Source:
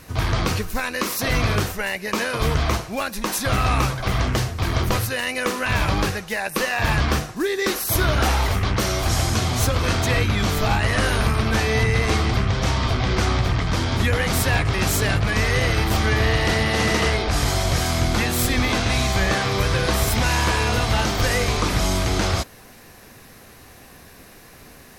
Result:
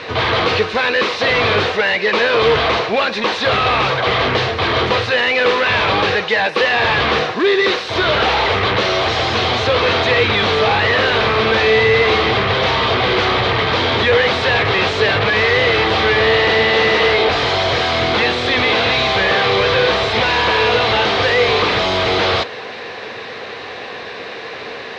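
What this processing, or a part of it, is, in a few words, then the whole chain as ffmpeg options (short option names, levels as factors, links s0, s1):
overdrive pedal into a guitar cabinet: -filter_complex "[0:a]asplit=2[s0][s1];[s1]highpass=f=720:p=1,volume=22.4,asoftclip=type=tanh:threshold=0.376[s2];[s0][s2]amix=inputs=2:normalize=0,lowpass=f=7300:p=1,volume=0.501,highpass=88,equalizer=f=94:t=q:w=4:g=3,equalizer=f=170:t=q:w=4:g=-5,equalizer=f=270:t=q:w=4:g=-4,equalizer=f=460:t=q:w=4:g=9,equalizer=f=1400:t=q:w=4:g=-3,equalizer=f=3800:t=q:w=4:g=4,lowpass=f=3900:w=0.5412,lowpass=f=3900:w=1.3066"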